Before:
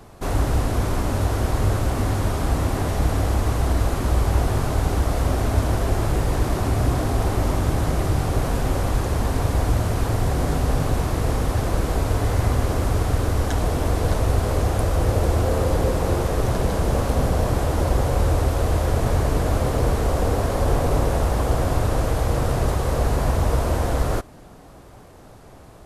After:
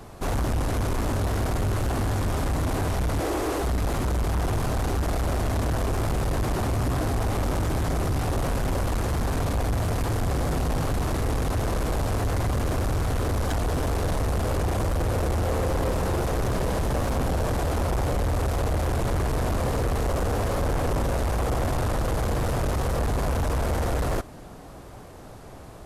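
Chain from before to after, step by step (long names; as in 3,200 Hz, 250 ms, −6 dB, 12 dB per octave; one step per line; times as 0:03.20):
0:03.20–0:03.64: low shelf with overshoot 240 Hz −11.5 dB, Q 3
soft clipping −23.5 dBFS, distortion −8 dB
level +2 dB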